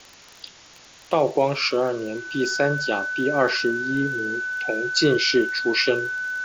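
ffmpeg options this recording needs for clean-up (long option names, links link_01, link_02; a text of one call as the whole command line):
ffmpeg -i in.wav -af "adeclick=threshold=4,bandreject=frequency=1500:width=30,afwtdn=0.0063" out.wav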